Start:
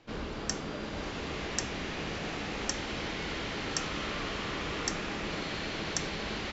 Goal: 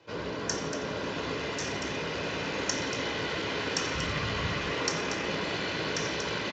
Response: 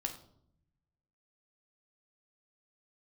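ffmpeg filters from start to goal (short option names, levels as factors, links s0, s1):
-filter_complex "[0:a]equalizer=f=63:t=o:w=2.1:g=-6.5,aecho=1:1:235:0.335[s0];[1:a]atrim=start_sample=2205,asetrate=23814,aresample=44100[s1];[s0][s1]afir=irnorm=-1:irlink=0,asettb=1/sr,asplit=3[s2][s3][s4];[s2]atrim=end=5.474[s5];[s3]atrim=start=5.47:end=6.1,asetpts=PTS-STARTPTS,afade=t=in:d=0.004:c=qsin,afade=t=out:st=0.626:d=0.004:c=qsin,acrossover=split=6300[s6][s7];[s7]acompressor=threshold=0.00708:ratio=4:attack=1:release=60[s8];[s6][s8]amix=inputs=2:normalize=0[s9];[s4]atrim=start=6.096[s10];[s5][s9]acrossfade=d=0.004:c1=hsin:c2=qsin[s11];[s11][s10]acrossfade=d=0.004:c1=qsin:c2=hsin,bandreject=f=2200:w=24,asplit=3[s12][s13][s14];[s12]afade=t=out:st=1.33:d=0.02[s15];[s13]volume=25.1,asoftclip=hard,volume=0.0398,afade=t=in:st=1.33:d=0.02,afade=t=out:st=2.18:d=0.02[s16];[s14]afade=t=in:st=2.18:d=0.02[s17];[s15][s16][s17]amix=inputs=3:normalize=0,asplit=3[s18][s19][s20];[s18]afade=t=out:st=3.94:d=0.02[s21];[s19]asubboost=boost=5:cutoff=140,afade=t=in:st=3.94:d=0.02,afade=t=out:st=4.66:d=0.02[s22];[s20]afade=t=in:st=4.66:d=0.02[s23];[s21][s22][s23]amix=inputs=3:normalize=0" -ar 16000 -c:a libspeex -b:a 34k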